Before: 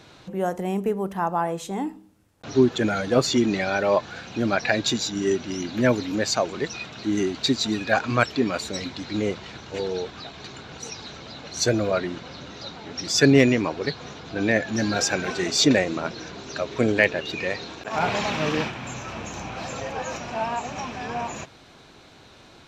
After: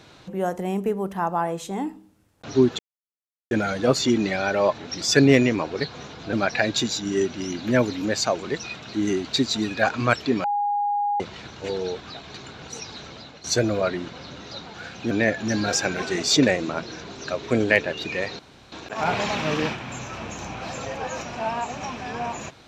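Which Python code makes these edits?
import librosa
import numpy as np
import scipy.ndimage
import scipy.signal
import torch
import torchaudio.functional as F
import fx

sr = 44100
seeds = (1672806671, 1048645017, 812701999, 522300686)

y = fx.edit(x, sr, fx.insert_silence(at_s=2.79, length_s=0.72),
    fx.swap(start_s=4.06, length_s=0.37, other_s=12.84, other_length_s=1.55),
    fx.bleep(start_s=8.54, length_s=0.76, hz=820.0, db=-20.5),
    fx.fade_out_to(start_s=11.22, length_s=0.32, floor_db=-10.0),
    fx.insert_room_tone(at_s=17.67, length_s=0.33), tone=tone)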